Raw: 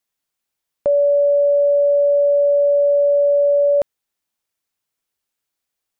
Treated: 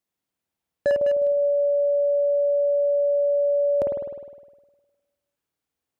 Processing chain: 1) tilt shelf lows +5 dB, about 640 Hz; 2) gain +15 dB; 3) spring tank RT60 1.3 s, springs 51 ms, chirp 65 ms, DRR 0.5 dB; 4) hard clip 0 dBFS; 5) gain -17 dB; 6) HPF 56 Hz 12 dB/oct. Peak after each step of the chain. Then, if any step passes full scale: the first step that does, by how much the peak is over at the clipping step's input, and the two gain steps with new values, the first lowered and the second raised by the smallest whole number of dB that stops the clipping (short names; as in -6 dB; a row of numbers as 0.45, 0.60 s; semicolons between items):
-9.5, +5.5, +5.5, 0.0, -17.0, -14.5 dBFS; step 2, 5.5 dB; step 2 +9 dB, step 5 -11 dB